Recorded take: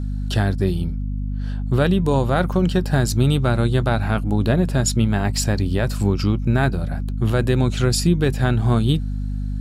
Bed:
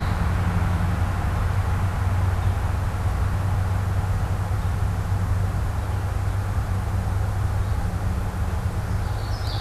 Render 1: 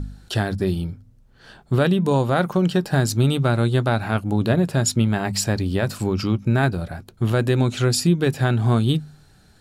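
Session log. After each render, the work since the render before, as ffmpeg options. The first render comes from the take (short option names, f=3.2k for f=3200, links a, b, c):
-af "bandreject=f=50:t=h:w=4,bandreject=f=100:t=h:w=4,bandreject=f=150:t=h:w=4,bandreject=f=200:t=h:w=4,bandreject=f=250:t=h:w=4"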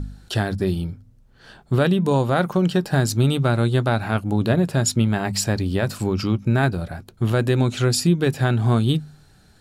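-af anull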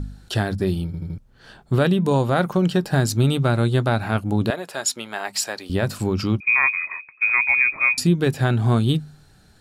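-filter_complex "[0:a]asettb=1/sr,asplit=3[a][b][c];[a]atrim=end=4.504[d];[b]atrim=start=4.5:end=5.7,asetpts=PTS-STARTPTS,afade=t=in:d=0.004:c=qsin,afade=t=out:st=1.196:d=0.004:c=qsin,highpass=640[e];[c]atrim=start=5.696[f];[d][e]acrossfade=d=0.004:c1=hsin:c2=qsin[g];[g][f]acrossfade=d=0.004:c1=qsin:c2=hsin,asettb=1/sr,asplit=3[h][i][j];[h]atrim=end=6.404[k];[i]atrim=start=6.4:end=7.98,asetpts=PTS-STARTPTS,afade=t=in:d=0.004:c=qsin,afade=t=out:st=1.576:d=0.004:c=qsin,lowpass=f=2.2k:t=q:w=0.5098,lowpass=f=2.2k:t=q:w=0.6013,lowpass=f=2.2k:t=q:w=0.9,lowpass=f=2.2k:t=q:w=2.563,afreqshift=-2600[l];[j]atrim=start=7.976[m];[k][l]acrossfade=d=0.004:c1=hsin:c2=qsin[n];[n][m]acrossfade=d=0.004:c1=qsin:c2=hsin,asplit=5[o][p][q][r][s];[o]atrim=end=0.942[t];[p]atrim=start=0.858:end=0.942[u];[q]atrim=start=0.858:end=0.942[v];[r]atrim=start=0.858:end=0.942[w];[s]atrim=start=1.178[x];[t][u]acrossfade=d=0.004:c1=hsin:c2=hsin[y];[y][v]acrossfade=d=0.004:c1=hsin:c2=hsin[z];[z][w]acrossfade=d=0.004:c1=hsin:c2=hsin[aa];[aa][x]acrossfade=d=0.004:c1=hsin:c2=hsin"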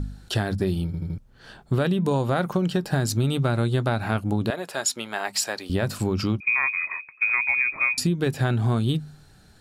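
-af "acompressor=threshold=-19dB:ratio=6"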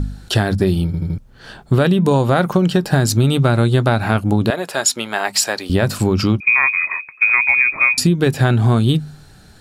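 -af "volume=8.5dB,alimiter=limit=-2dB:level=0:latency=1"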